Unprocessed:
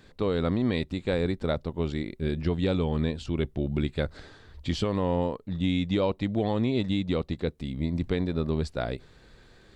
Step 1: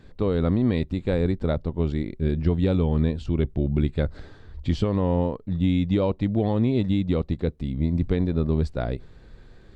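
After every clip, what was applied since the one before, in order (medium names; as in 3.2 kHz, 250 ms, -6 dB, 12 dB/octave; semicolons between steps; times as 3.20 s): tilt EQ -2 dB/octave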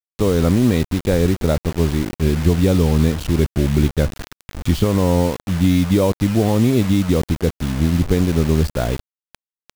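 bit crusher 6-bit; trim +6.5 dB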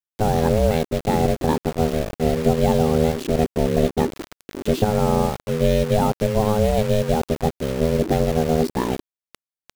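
ring modulator 320 Hz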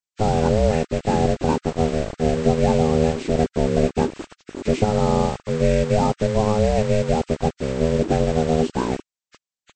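knee-point frequency compression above 1.2 kHz 1.5:1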